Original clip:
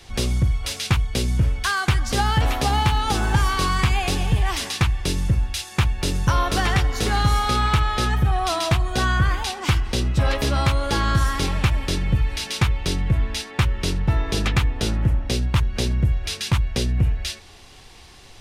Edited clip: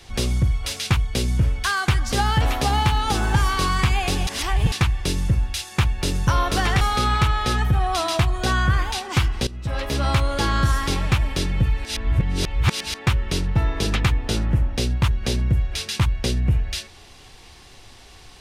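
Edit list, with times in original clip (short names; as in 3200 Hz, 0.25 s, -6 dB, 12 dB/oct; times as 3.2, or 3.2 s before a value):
4.27–4.72 reverse
6.81–7.33 cut
9.99–10.62 fade in, from -17.5 dB
12.37–13.46 reverse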